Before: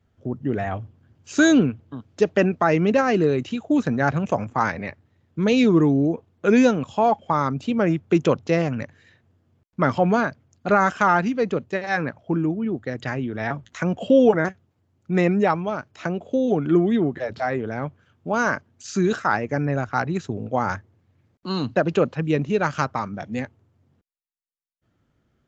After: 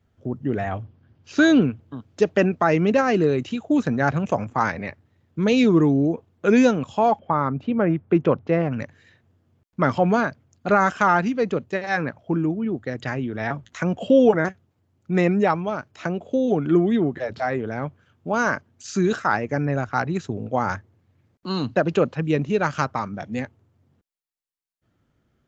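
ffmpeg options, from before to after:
-filter_complex "[0:a]asettb=1/sr,asplit=3[s0][s1][s2];[s0]atrim=end=0.824[s3];[s1]atrim=start=0.82:end=1.62,asetpts=PTS-STARTPTS,afade=t=in:d=0.004:c=qsin,afade=t=out:st=0.796:d=0.004:c=qsin,lowpass=f=5300:w=0.5412,lowpass=f=5300:w=1.3066[s4];[s2]atrim=start=1.616[s5];[s3][s4]acrossfade=d=0.004:c1=hsin:c2=qsin[s6];[s6][s5]acrossfade=d=0.004:c1=qsin:c2=hsin,asettb=1/sr,asplit=3[s7][s8][s9];[s7]atrim=end=7.194[s10];[s8]atrim=start=7.19:end=8.72,asetpts=PTS-STARTPTS,afade=t=in:d=0.004:c=qsin,afade=t=out:st=1.526:d=0.004:c=qsin,lowpass=2000[s11];[s9]atrim=start=8.716[s12];[s10][s11]acrossfade=d=0.004:c1=hsin:c2=qsin[s13];[s13][s12]acrossfade=d=0.004:c1=qsin:c2=hsin"

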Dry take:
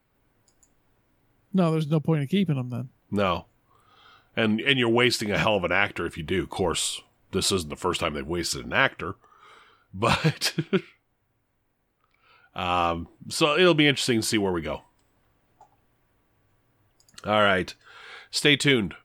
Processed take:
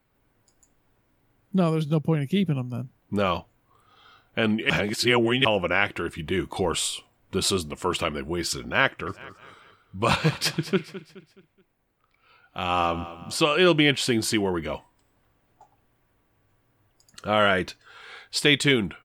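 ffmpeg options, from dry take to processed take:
-filter_complex "[0:a]asplit=3[s0][s1][s2];[s0]afade=t=out:st=9.06:d=0.02[s3];[s1]aecho=1:1:212|424|636|848:0.178|0.0711|0.0285|0.0114,afade=t=in:st=9.06:d=0.02,afade=t=out:st=13.36:d=0.02[s4];[s2]afade=t=in:st=13.36:d=0.02[s5];[s3][s4][s5]amix=inputs=3:normalize=0,asplit=3[s6][s7][s8];[s6]atrim=end=4.702[s9];[s7]atrim=start=4.698:end=5.452,asetpts=PTS-STARTPTS,areverse[s10];[s8]atrim=start=5.448[s11];[s9][s10]acrossfade=d=0.004:c1=hsin:c2=hsin[s12];[s12][s11]acrossfade=d=0.004:c1=hsin:c2=hsin"

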